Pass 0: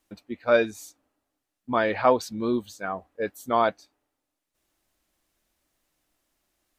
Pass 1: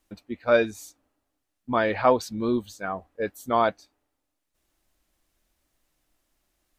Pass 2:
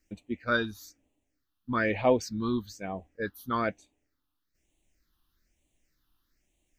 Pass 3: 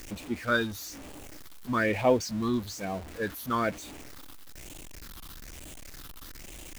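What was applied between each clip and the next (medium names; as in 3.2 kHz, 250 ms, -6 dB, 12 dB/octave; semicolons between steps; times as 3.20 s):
bass shelf 84 Hz +8.5 dB
phase shifter stages 6, 1.1 Hz, lowest notch 560–1400 Hz
jump at every zero crossing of -38 dBFS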